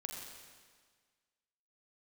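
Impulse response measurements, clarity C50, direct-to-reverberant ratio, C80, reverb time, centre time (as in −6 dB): 2.0 dB, 0.0 dB, 2.5 dB, 1.6 s, 78 ms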